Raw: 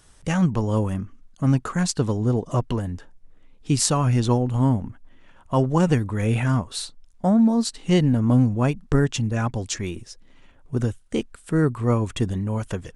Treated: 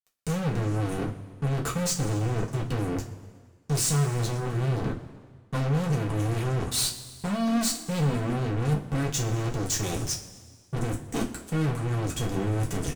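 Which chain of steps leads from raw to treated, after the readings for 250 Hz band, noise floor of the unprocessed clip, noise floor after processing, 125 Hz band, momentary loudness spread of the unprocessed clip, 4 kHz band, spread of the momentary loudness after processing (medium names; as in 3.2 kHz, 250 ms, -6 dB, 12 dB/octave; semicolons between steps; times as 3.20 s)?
-8.0 dB, -52 dBFS, -55 dBFS, -4.5 dB, 11 LU, -1.0 dB, 8 LU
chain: high-pass 42 Hz 24 dB/octave; tone controls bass +14 dB, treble +11 dB; reverse; compression 12:1, threshold -19 dBFS, peak gain reduction 17 dB; reverse; fuzz box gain 28 dB, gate -36 dBFS; flange 0.42 Hz, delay 8.7 ms, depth 4.1 ms, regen -49%; saturation -27 dBFS, distortion -9 dB; on a send: frequency-shifting echo 122 ms, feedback 56%, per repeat +38 Hz, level -23 dB; on the sum: wow and flutter 25 cents; two-slope reverb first 0.23 s, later 1.7 s, from -18 dB, DRR -0.5 dB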